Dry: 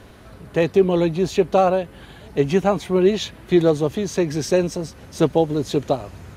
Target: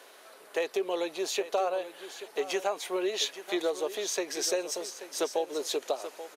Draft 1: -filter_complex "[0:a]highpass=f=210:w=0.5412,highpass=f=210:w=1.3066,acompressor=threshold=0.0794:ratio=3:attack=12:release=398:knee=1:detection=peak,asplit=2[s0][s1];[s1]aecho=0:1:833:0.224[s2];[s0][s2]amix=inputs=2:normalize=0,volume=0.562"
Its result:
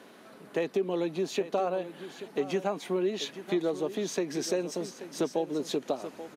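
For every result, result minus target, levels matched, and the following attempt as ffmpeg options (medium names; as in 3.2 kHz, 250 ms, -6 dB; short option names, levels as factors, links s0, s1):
8 kHz band -7.0 dB; 250 Hz band +6.0 dB
-filter_complex "[0:a]highpass=f=210:w=0.5412,highpass=f=210:w=1.3066,acompressor=threshold=0.0794:ratio=3:attack=12:release=398:knee=1:detection=peak,highshelf=f=4100:g=8.5,asplit=2[s0][s1];[s1]aecho=0:1:833:0.224[s2];[s0][s2]amix=inputs=2:normalize=0,volume=0.562"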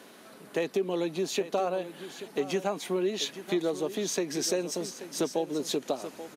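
250 Hz band +5.5 dB
-filter_complex "[0:a]highpass=f=430:w=0.5412,highpass=f=430:w=1.3066,acompressor=threshold=0.0794:ratio=3:attack=12:release=398:knee=1:detection=peak,highshelf=f=4100:g=8.5,asplit=2[s0][s1];[s1]aecho=0:1:833:0.224[s2];[s0][s2]amix=inputs=2:normalize=0,volume=0.562"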